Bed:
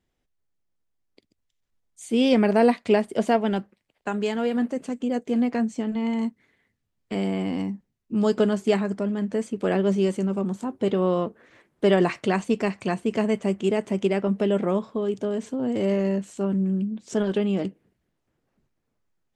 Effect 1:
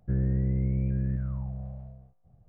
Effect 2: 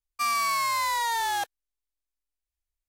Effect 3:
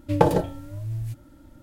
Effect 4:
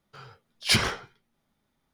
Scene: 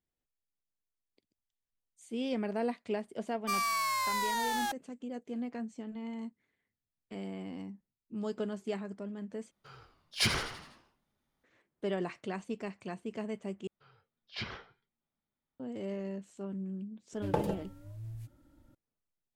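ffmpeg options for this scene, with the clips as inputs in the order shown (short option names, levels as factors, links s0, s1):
-filter_complex "[4:a]asplit=2[s0][s1];[0:a]volume=0.178[s2];[2:a]aeval=exprs='sgn(val(0))*max(abs(val(0))-0.00376,0)':c=same[s3];[s0]asplit=7[s4][s5][s6][s7][s8][s9][s10];[s5]adelay=82,afreqshift=-74,volume=0.316[s11];[s6]adelay=164,afreqshift=-148,volume=0.17[s12];[s7]adelay=246,afreqshift=-222,volume=0.0923[s13];[s8]adelay=328,afreqshift=-296,volume=0.0495[s14];[s9]adelay=410,afreqshift=-370,volume=0.0269[s15];[s10]adelay=492,afreqshift=-444,volume=0.0145[s16];[s4][s11][s12][s13][s14][s15][s16]amix=inputs=7:normalize=0[s17];[s1]lowpass=f=4500:w=0.5412,lowpass=f=4500:w=1.3066[s18];[s2]asplit=3[s19][s20][s21];[s19]atrim=end=9.514[s22];[s17]atrim=end=1.93,asetpts=PTS-STARTPTS,volume=0.447[s23];[s20]atrim=start=11.436:end=13.674[s24];[s18]atrim=end=1.93,asetpts=PTS-STARTPTS,volume=0.15[s25];[s21]atrim=start=15.596[s26];[s3]atrim=end=2.88,asetpts=PTS-STARTPTS,volume=0.562,afade=t=in:d=0.004:c=hsin,afade=t=out:st=2.876:d=0.004:c=hsin,adelay=3280[s27];[3:a]atrim=end=1.62,asetpts=PTS-STARTPTS,volume=0.224,afade=t=in:d=0.004:c=hsin,afade=t=out:st=1.616:d=0.004:c=hsin,adelay=17130[s28];[s22][s23]acrossfade=d=0.004:c1=hsin:c2=hsin[s29];[s29][s24]acrossfade=d=0.004:c1=hsin:c2=hsin[s30];[s30][s25]acrossfade=d=0.004:c1=hsin:c2=hsin[s31];[s31][s26]acrossfade=d=0.004:c1=hsin:c2=hsin[s32];[s32][s27][s28]amix=inputs=3:normalize=0"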